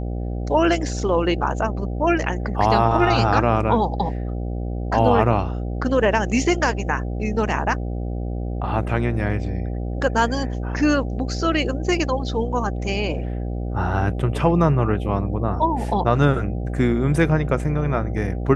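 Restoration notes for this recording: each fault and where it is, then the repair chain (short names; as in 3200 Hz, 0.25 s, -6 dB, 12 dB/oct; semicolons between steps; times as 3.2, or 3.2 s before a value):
buzz 60 Hz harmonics 13 -26 dBFS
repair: de-hum 60 Hz, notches 13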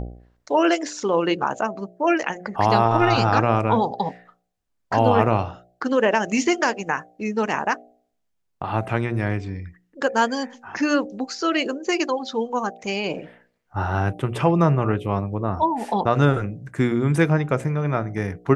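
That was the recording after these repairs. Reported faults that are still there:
none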